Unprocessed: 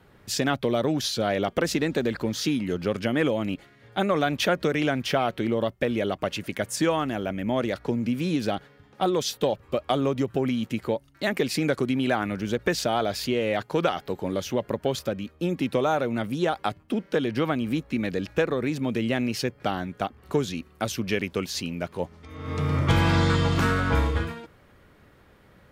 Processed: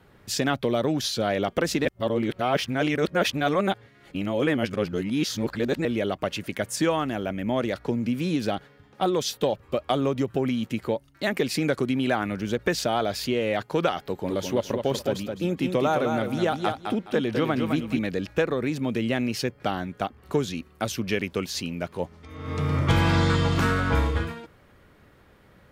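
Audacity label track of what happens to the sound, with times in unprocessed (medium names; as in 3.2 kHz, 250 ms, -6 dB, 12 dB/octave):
1.850000	5.850000	reverse
14.020000	17.990000	feedback delay 209 ms, feedback 23%, level -5.5 dB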